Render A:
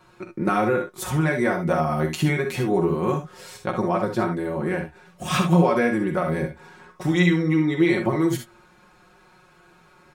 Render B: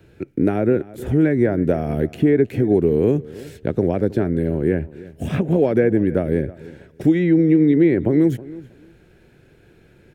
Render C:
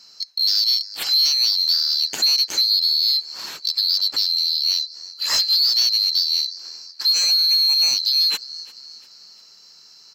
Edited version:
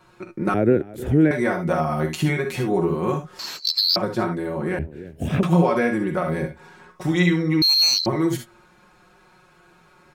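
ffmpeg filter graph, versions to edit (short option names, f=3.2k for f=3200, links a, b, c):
-filter_complex "[1:a]asplit=2[a][b];[2:a]asplit=2[c][d];[0:a]asplit=5[e][f][g][h][i];[e]atrim=end=0.542[j];[a]atrim=start=0.538:end=1.312[k];[f]atrim=start=1.308:end=3.392[l];[c]atrim=start=3.388:end=3.962[m];[g]atrim=start=3.958:end=4.792[n];[b]atrim=start=4.788:end=5.432[o];[h]atrim=start=5.428:end=7.622[p];[d]atrim=start=7.618:end=8.062[q];[i]atrim=start=8.058[r];[j][k]acrossfade=d=0.004:c1=hsin:c2=hsin[s];[s][l]acrossfade=d=0.004:c1=hsin:c2=hsin[t];[t][m]acrossfade=d=0.004:c1=hsin:c2=hsin[u];[u][n]acrossfade=d=0.004:c1=hsin:c2=hsin[v];[v][o]acrossfade=d=0.004:c1=hsin:c2=hsin[w];[w][p]acrossfade=d=0.004:c1=hsin:c2=hsin[x];[x][q]acrossfade=d=0.004:c1=hsin:c2=hsin[y];[y][r]acrossfade=d=0.004:c1=hsin:c2=hsin"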